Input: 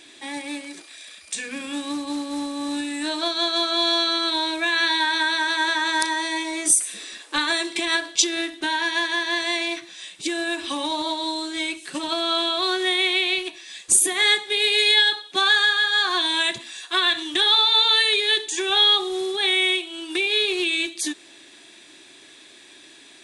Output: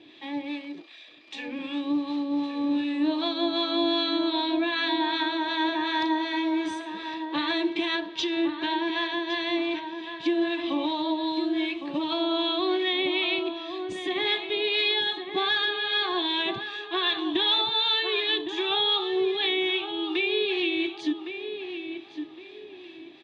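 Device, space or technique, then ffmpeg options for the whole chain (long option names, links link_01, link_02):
guitar amplifier with harmonic tremolo: -filter_complex "[0:a]acrossover=split=830[link_01][link_02];[link_01]aeval=exprs='val(0)*(1-0.5/2+0.5/2*cos(2*PI*2.6*n/s))':channel_layout=same[link_03];[link_02]aeval=exprs='val(0)*(1-0.5/2-0.5/2*cos(2*PI*2.6*n/s))':channel_layout=same[link_04];[link_03][link_04]amix=inputs=2:normalize=0,asoftclip=type=tanh:threshold=-12.5dB,highpass=85,equalizer=frequency=98:width_type=q:width=4:gain=7,equalizer=frequency=160:width_type=q:width=4:gain=5,equalizer=frequency=320:width_type=q:width=4:gain=6,equalizer=frequency=1500:width_type=q:width=4:gain=-10,equalizer=frequency=2100:width_type=q:width=4:gain=-4,lowpass=frequency=3500:width=0.5412,lowpass=frequency=3500:width=1.3066,asettb=1/sr,asplit=3[link_05][link_06][link_07];[link_05]atrim=end=0.884[link_08];[link_06]atrim=start=0.88:end=1.59,asetpts=PTS-STARTPTS,afade=type=in:duration=0.004:curve=qsin,afade=type=out:start_time=0.706:duration=0.004:curve=qsin,highpass=260[link_09];[link_07]atrim=start=1.586[link_10];[link_08][link_09]acrossfade=duration=0.004:curve1=hsin:curve2=qsin[link_11];[link_11][link_10]acrossfade=duration=0.004:curve1=qsin:curve2=hsin,asplit=2[link_12][link_13];[link_13]adelay=1111,lowpass=frequency=2200:poles=1,volume=-7.5dB,asplit=2[link_14][link_15];[link_15]adelay=1111,lowpass=frequency=2200:poles=1,volume=0.36,asplit=2[link_16][link_17];[link_17]adelay=1111,lowpass=frequency=2200:poles=1,volume=0.36,asplit=2[link_18][link_19];[link_19]adelay=1111,lowpass=frequency=2200:poles=1,volume=0.36[link_20];[link_12][link_14][link_16][link_18][link_20]amix=inputs=5:normalize=0"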